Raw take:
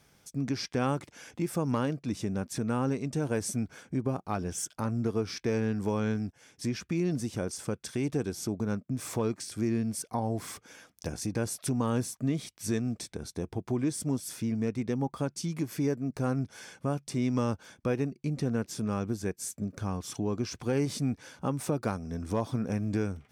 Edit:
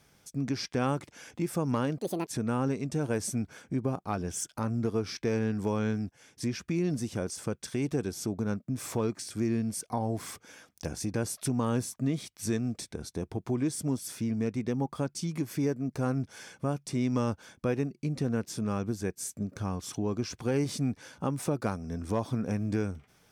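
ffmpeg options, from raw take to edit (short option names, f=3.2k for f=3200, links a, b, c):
-filter_complex "[0:a]asplit=3[a][b][c];[a]atrim=end=1.984[d];[b]atrim=start=1.98:end=2.48,asetpts=PTS-STARTPTS,asetrate=76293,aresample=44100[e];[c]atrim=start=2.476[f];[d][e]acrossfade=d=0.004:c1=hsin:c2=hsin[g];[g][f]acrossfade=d=0.004:c1=hsin:c2=hsin"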